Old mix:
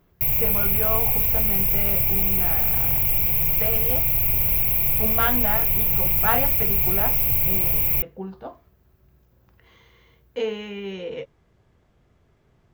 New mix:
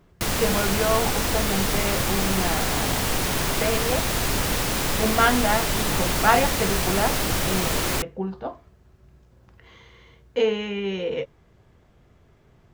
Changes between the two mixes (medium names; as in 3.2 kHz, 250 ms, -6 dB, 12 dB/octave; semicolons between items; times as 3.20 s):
speech +5.0 dB; background: remove FFT filter 150 Hz 0 dB, 220 Hz -17 dB, 510 Hz -10 dB, 1 kHz -12 dB, 1.6 kHz -29 dB, 2.3 kHz +1 dB, 3.8 kHz -22 dB, 9 kHz -22 dB, 13 kHz +14 dB